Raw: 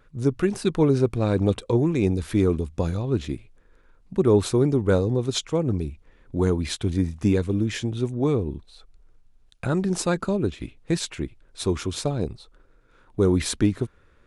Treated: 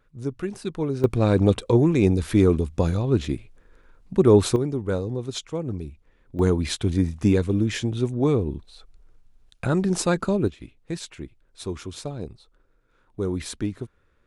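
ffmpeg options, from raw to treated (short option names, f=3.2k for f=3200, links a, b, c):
-af "asetnsamples=n=441:p=0,asendcmd='1.04 volume volume 3dB;4.56 volume volume -5.5dB;6.39 volume volume 1.5dB;10.48 volume volume -7dB',volume=-7dB"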